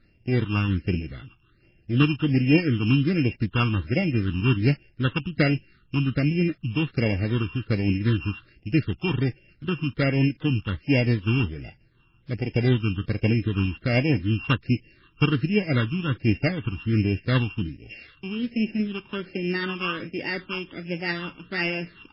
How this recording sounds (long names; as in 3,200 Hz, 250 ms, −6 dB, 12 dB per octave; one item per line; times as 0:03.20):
a buzz of ramps at a fixed pitch in blocks of 16 samples
tremolo triangle 5.6 Hz, depth 40%
phaser sweep stages 8, 1.3 Hz, lowest notch 570–1,200 Hz
MP3